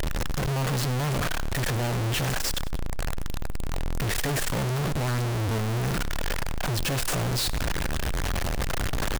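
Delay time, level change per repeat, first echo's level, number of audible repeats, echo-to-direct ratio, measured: 97 ms, -6.0 dB, -19.0 dB, 2, -18.0 dB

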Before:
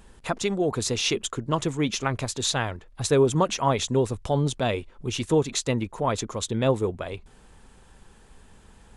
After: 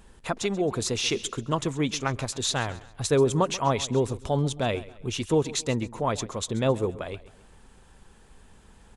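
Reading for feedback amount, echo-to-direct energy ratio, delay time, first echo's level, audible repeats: 38%, -17.5 dB, 134 ms, -18.0 dB, 3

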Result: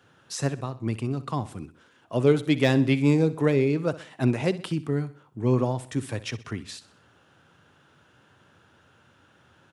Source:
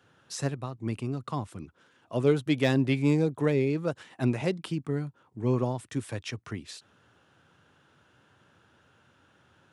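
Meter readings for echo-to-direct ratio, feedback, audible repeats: -15.5 dB, 46%, 3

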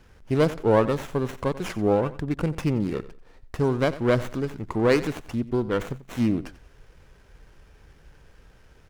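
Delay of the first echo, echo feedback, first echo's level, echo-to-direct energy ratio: 90 ms, 25%, -16.5 dB, -16.0 dB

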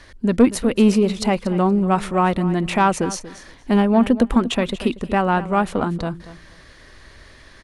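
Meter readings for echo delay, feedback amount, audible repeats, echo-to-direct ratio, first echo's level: 236 ms, 16%, 2, -15.5 dB, -15.5 dB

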